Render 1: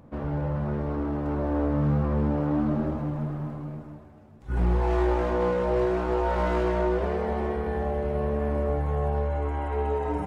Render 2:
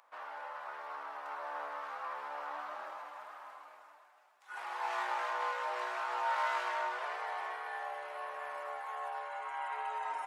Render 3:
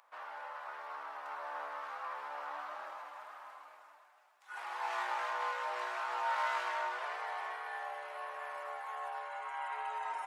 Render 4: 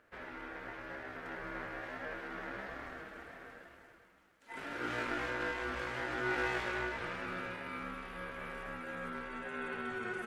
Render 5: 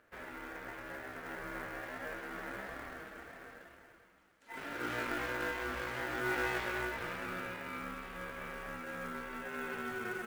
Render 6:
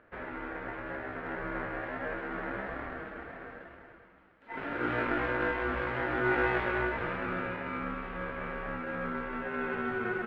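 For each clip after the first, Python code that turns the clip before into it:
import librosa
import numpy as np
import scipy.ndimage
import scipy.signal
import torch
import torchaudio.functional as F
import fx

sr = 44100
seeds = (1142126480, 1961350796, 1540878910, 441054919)

y1 = scipy.signal.sosfilt(scipy.signal.butter(4, 910.0, 'highpass', fs=sr, output='sos'), x)
y2 = fx.low_shelf(y1, sr, hz=420.0, db=-6.0)
y3 = y2 * np.sin(2.0 * np.pi * 550.0 * np.arange(len(y2)) / sr)
y3 = F.gain(torch.from_numpy(y3), 2.5).numpy()
y4 = fx.quant_float(y3, sr, bits=2)
y5 = fx.air_absorb(y4, sr, metres=490.0)
y5 = F.gain(torch.from_numpy(y5), 9.0).numpy()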